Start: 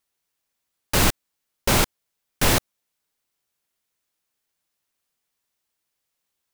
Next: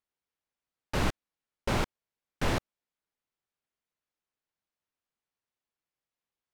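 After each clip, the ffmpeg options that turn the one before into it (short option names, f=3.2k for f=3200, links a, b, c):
-af "aemphasis=mode=reproduction:type=75fm,volume=-8.5dB"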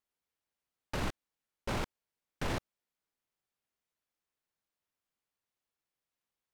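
-af "alimiter=level_in=1.5dB:limit=-24dB:level=0:latency=1:release=26,volume=-1.5dB"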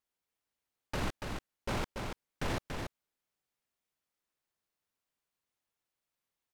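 -af "aecho=1:1:285:0.562"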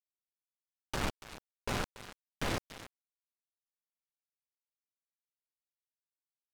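-af "acrusher=bits=4:mix=0:aa=0.5"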